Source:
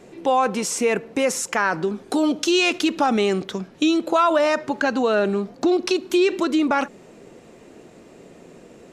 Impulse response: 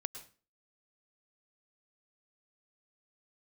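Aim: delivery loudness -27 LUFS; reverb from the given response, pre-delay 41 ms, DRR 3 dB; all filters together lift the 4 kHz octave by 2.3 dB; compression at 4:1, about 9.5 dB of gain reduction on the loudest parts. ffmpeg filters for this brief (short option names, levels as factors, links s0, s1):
-filter_complex "[0:a]equalizer=f=4000:t=o:g=3,acompressor=threshold=0.0501:ratio=4,asplit=2[s0][s1];[1:a]atrim=start_sample=2205,adelay=41[s2];[s1][s2]afir=irnorm=-1:irlink=0,volume=0.794[s3];[s0][s3]amix=inputs=2:normalize=0"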